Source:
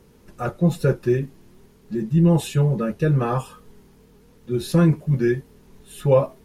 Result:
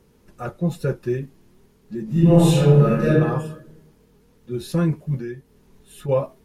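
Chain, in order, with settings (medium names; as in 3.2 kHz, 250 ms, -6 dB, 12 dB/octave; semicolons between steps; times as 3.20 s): 2.04–3.10 s: reverb throw, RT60 1 s, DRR -10 dB; 5.19–6.09 s: compression 2:1, threshold -30 dBFS, peak gain reduction 8 dB; trim -4 dB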